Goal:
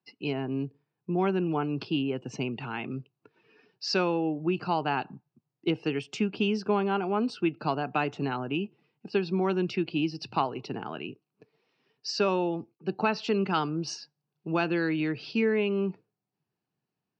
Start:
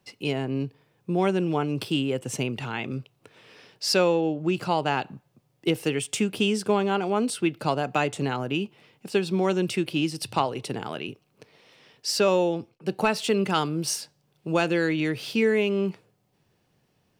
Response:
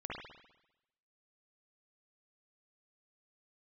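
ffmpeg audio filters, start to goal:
-af "highpass=140,equalizer=f=540:t=q:w=4:g=-9,equalizer=f=2k:t=q:w=4:g=-5,equalizer=f=3.4k:t=q:w=4:g=-8,lowpass=f=5k:w=0.5412,lowpass=f=5k:w=1.3066,afftdn=nr=14:nf=-50,volume=-1.5dB"

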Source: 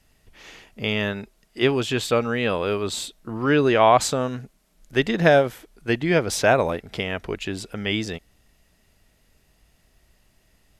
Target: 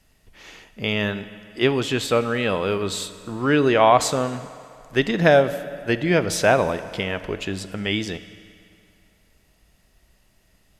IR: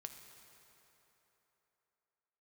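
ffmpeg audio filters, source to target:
-filter_complex "[0:a]asplit=2[a][b];[1:a]atrim=start_sample=2205,asetrate=61740,aresample=44100[c];[b][c]afir=irnorm=-1:irlink=0,volume=7dB[d];[a][d]amix=inputs=2:normalize=0,volume=-4.5dB"

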